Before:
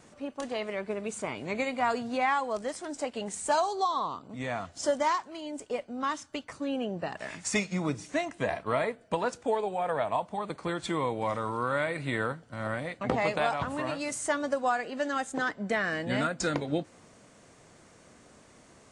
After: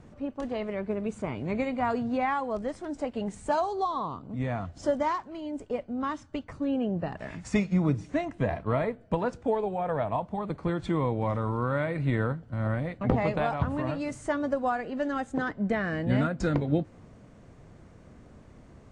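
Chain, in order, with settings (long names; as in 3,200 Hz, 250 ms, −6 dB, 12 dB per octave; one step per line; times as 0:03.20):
RIAA equalisation playback
level −1.5 dB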